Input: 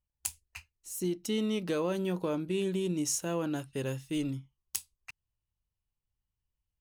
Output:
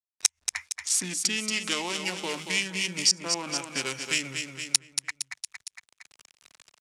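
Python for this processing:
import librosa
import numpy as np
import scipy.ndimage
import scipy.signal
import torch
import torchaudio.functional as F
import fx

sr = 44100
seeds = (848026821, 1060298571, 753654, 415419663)

p1 = fx.wiener(x, sr, points=9)
p2 = fx.peak_eq(p1, sr, hz=340.0, db=-3.5, octaves=0.45)
p3 = fx.rider(p2, sr, range_db=3, speed_s=0.5)
p4 = p2 + (p3 * 10.0 ** (-3.0 / 20.0))
p5 = fx.quant_dither(p4, sr, seeds[0], bits=12, dither='none')
p6 = fx.gate_flip(p5, sr, shuts_db=-15.0, range_db=-32)
p7 = fx.formant_shift(p6, sr, semitones=-3)
p8 = fx.weighting(p7, sr, curve='ITU-R 468')
p9 = p8 + fx.echo_feedback(p8, sr, ms=230, feedback_pct=39, wet_db=-9, dry=0)
p10 = fx.band_squash(p9, sr, depth_pct=70)
y = p10 * 10.0 ** (2.0 / 20.0)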